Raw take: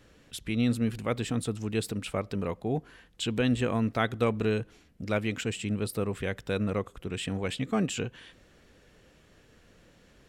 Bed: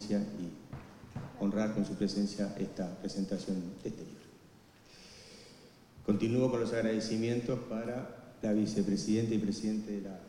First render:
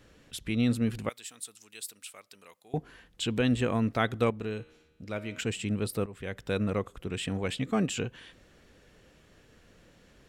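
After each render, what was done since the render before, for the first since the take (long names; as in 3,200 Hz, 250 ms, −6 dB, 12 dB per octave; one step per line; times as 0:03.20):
0:01.09–0:02.74: first difference
0:04.30–0:05.39: tuned comb filter 78 Hz, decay 1.4 s
0:06.06–0:06.52: fade in, from −16 dB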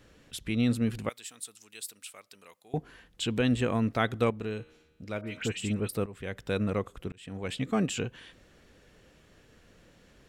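0:05.21–0:05.89: all-pass dispersion highs, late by 57 ms, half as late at 2,200 Hz
0:07.12–0:07.62: fade in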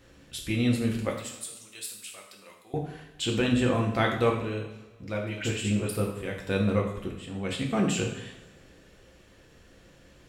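coupled-rooms reverb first 0.65 s, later 1.8 s, from −17 dB, DRR −0.5 dB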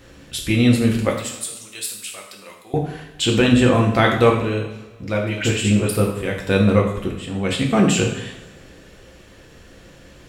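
level +10 dB
brickwall limiter −3 dBFS, peak gain reduction 2 dB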